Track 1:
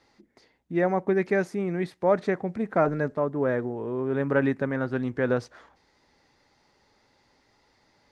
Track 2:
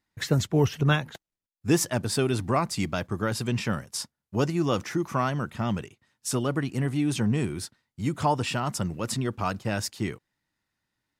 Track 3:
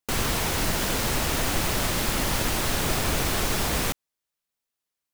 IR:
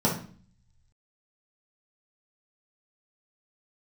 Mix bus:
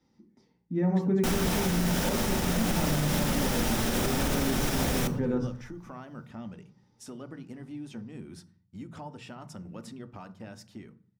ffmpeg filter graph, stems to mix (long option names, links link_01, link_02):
-filter_complex "[0:a]equalizer=frequency=100:width_type=o:width=0.67:gain=4,equalizer=frequency=630:width_type=o:width=0.67:gain=-11,equalizer=frequency=1600:width_type=o:width=0.67:gain=-7,volume=-15dB,asplit=2[link_01][link_02];[link_02]volume=-5dB[link_03];[1:a]acompressor=threshold=-29dB:ratio=12,highshelf=frequency=5700:gain=-8,dynaudnorm=framelen=120:gausssize=21:maxgain=4dB,adelay=750,volume=-15.5dB,asplit=2[link_04][link_05];[link_05]volume=-21dB[link_06];[2:a]adelay=1150,volume=-2dB,asplit=2[link_07][link_08];[link_08]volume=-17dB[link_09];[3:a]atrim=start_sample=2205[link_10];[link_03][link_06][link_09]amix=inputs=3:normalize=0[link_11];[link_11][link_10]afir=irnorm=-1:irlink=0[link_12];[link_01][link_04][link_07][link_12]amix=inputs=4:normalize=0,alimiter=limit=-17.5dB:level=0:latency=1:release=104"